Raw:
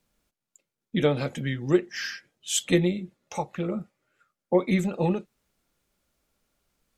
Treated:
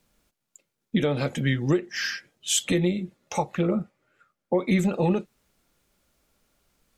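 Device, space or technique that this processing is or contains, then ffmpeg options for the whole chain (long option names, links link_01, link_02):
stacked limiters: -filter_complex "[0:a]alimiter=limit=-13.5dB:level=0:latency=1:release=430,alimiter=limit=-18dB:level=0:latency=1:release=96,asettb=1/sr,asplit=3[link_01][link_02][link_03];[link_01]atrim=end=3.614[link_04];[link_02]atrim=start=3.61:end=4.56,asetpts=PTS-STARTPTS,afade=type=in:duration=0.004:curve=qsin,afade=type=out:start_time=0.946:duration=0.004:curve=qsin,highshelf=frequency=3700:gain=-7[link_05];[link_03]atrim=start=4.556[link_06];[link_04][link_05]acrossfade=duration=0.004:curve1=hsin:curve2=qsin[link_07];[link_07][link_06]acrossfade=duration=0.004:curve1=qsin:curve2=hsin,volume=5.5dB"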